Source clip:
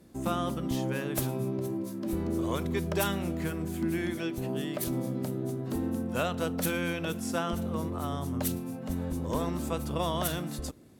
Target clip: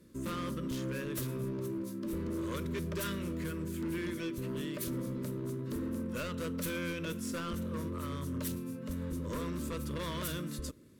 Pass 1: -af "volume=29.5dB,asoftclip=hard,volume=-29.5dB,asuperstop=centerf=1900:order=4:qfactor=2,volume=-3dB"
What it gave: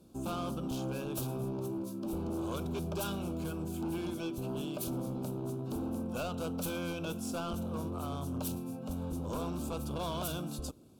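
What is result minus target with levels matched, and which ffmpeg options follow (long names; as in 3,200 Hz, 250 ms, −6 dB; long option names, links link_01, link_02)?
2,000 Hz band −5.0 dB
-af "volume=29.5dB,asoftclip=hard,volume=-29.5dB,asuperstop=centerf=760:order=4:qfactor=2,volume=-3dB"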